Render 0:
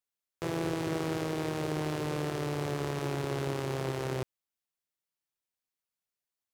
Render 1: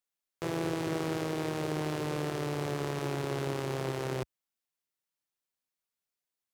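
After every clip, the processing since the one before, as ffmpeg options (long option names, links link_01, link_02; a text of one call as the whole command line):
ffmpeg -i in.wav -af "equalizer=frequency=67:width_type=o:width=1:gain=-6" out.wav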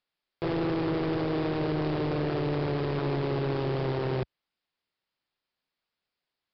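ffmpeg -i in.wav -af "volume=32.5dB,asoftclip=hard,volume=-32.5dB,aresample=11025,aresample=44100,volume=8dB" out.wav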